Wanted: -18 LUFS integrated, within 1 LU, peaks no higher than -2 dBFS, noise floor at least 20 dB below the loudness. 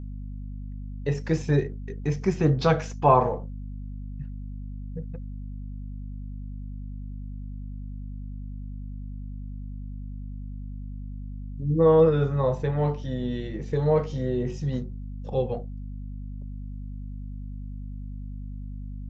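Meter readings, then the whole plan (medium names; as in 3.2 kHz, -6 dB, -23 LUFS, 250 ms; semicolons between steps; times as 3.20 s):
hum 50 Hz; highest harmonic 250 Hz; hum level -33 dBFS; loudness -25.5 LUFS; peak level -5.5 dBFS; loudness target -18.0 LUFS
-> hum notches 50/100/150/200/250 Hz; trim +7.5 dB; peak limiter -2 dBFS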